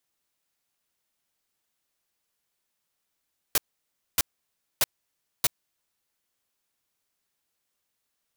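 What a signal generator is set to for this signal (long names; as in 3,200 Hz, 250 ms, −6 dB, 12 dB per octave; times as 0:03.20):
noise bursts white, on 0.03 s, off 0.60 s, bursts 4, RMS −21 dBFS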